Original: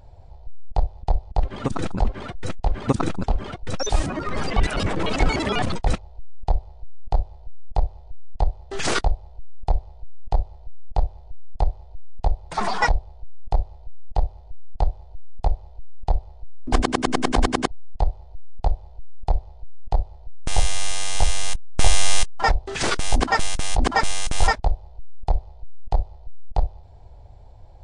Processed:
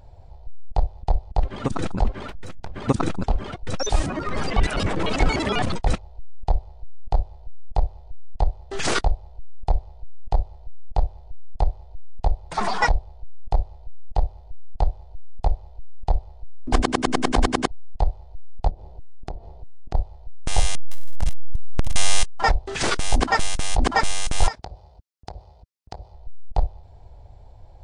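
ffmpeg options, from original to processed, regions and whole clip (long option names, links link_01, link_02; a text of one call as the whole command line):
ffmpeg -i in.wav -filter_complex "[0:a]asettb=1/sr,asplit=3[link_01][link_02][link_03];[link_01]atrim=end=2.294[link_04];[link_02]atrim=start=2.29:end=2.76,asetpts=PTS-STARTPTS,afade=type=in:duration=0.004:curve=qsin,afade=type=out:start_time=0.466:duration=0.004:curve=qsin,acompressor=threshold=-28dB:ratio=6:attack=3.2:release=140:knee=1:detection=peak,aeval=exprs='abs(val(0))':channel_layout=same,aeval=exprs='val(0)+0.00178*(sin(2*PI*50*n/s)+sin(2*PI*2*50*n/s)/2+sin(2*PI*3*50*n/s)/3+sin(2*PI*4*50*n/s)/4+sin(2*PI*5*50*n/s)/5)':channel_layout=same[link_05];[link_03]atrim=start=2.756[link_06];[link_04][link_05]acrossfade=duration=0.004:curve1=hsin:curve2=qsin[link_07];[link_07][link_06]acrossfade=duration=0.004:curve1=qsin:curve2=hsin,asettb=1/sr,asplit=3[link_08][link_09][link_10];[link_08]atrim=end=18.694[link_11];[link_09]atrim=start=18.69:end=19.95,asetpts=PTS-STARTPTS,afade=type=in:duration=0.004:curve=qsin,afade=type=out:start_time=1.256:duration=0.004:curve=qsin,equalizer=frequency=280:width=0.75:gain=13.5,bandreject=frequency=228.9:width_type=h:width=4,bandreject=frequency=457.8:width_type=h:width=4,bandreject=frequency=686.7:width_type=h:width=4,bandreject=frequency=915.6:width_type=h:width=4,bandreject=frequency=1144.5:width_type=h:width=4,bandreject=frequency=1373.4:width_type=h:width=4,bandreject=frequency=1602.3:width_type=h:width=4,bandreject=frequency=1831.2:width_type=h:width=4,bandreject=frequency=2060.1:width_type=h:width=4,bandreject=frequency=2289:width_type=h:width=4,bandreject=frequency=2517.9:width_type=h:width=4,bandreject=frequency=2746.8:width_type=h:width=4,bandreject=frequency=2975.7:width_type=h:width=4,bandreject=frequency=3204.6:width_type=h:width=4,bandreject=frequency=3433.5:width_type=h:width=4,bandreject=frequency=3662.4:width_type=h:width=4,bandreject=frequency=3891.3:width_type=h:width=4,bandreject=frequency=4120.2:width_type=h:width=4,bandreject=frequency=4349.1:width_type=h:width=4,bandreject=frequency=4578:width_type=h:width=4,acompressor=threshold=-29dB:ratio=6:attack=3.2:release=140:knee=1:detection=peak[link_12];[link_10]atrim=start=19.946[link_13];[link_11][link_12]acrossfade=duration=0.004:curve1=hsin:curve2=qsin[link_14];[link_14][link_13]acrossfade=duration=0.004:curve1=qsin:curve2=hsin,asettb=1/sr,asplit=3[link_15][link_16][link_17];[link_15]atrim=end=20.754[link_18];[link_16]atrim=start=20.75:end=21.96,asetpts=PTS-STARTPTS,afade=type=in:duration=0.004:curve=qsin,afade=type=out:start_time=1.206:duration=0.004:curve=qsin,lowshelf=frequency=210:gain=10.5,acompressor=threshold=-8dB:ratio=12:attack=3.2:release=140:knee=1:detection=peak,asoftclip=type=hard:threshold=-12dB[link_19];[link_17]atrim=start=21.956[link_20];[link_18][link_19]acrossfade=duration=0.004:curve1=hsin:curve2=qsin[link_21];[link_21][link_20]acrossfade=duration=0.004:curve1=qsin:curve2=hsin,asettb=1/sr,asplit=3[link_22][link_23][link_24];[link_22]atrim=end=24.484[link_25];[link_23]atrim=start=24.48:end=26.14,asetpts=PTS-STARTPTS,afade=type=in:duration=0.004:curve=qsin,afade=type=out:start_time=1.656:duration=0.004:curve=qsin,highpass=80,acompressor=threshold=-31dB:ratio=6:attack=3.2:release=140:knee=1:detection=peak,equalizer=frequency=5000:width=2.4:gain=6[link_26];[link_24]atrim=start=26.136[link_27];[link_25][link_26]acrossfade=duration=0.004:curve1=hsin:curve2=qsin[link_28];[link_28][link_27]acrossfade=duration=0.004:curve1=qsin:curve2=hsin" out.wav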